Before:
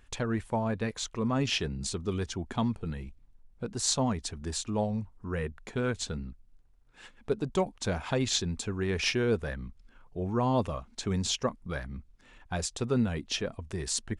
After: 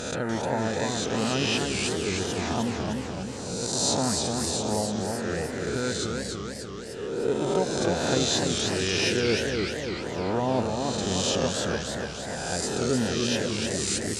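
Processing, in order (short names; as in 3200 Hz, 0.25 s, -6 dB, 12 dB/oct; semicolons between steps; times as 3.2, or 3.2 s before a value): spectral swells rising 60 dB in 1.45 s; notch comb 1100 Hz; warbling echo 0.299 s, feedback 62%, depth 203 cents, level -4 dB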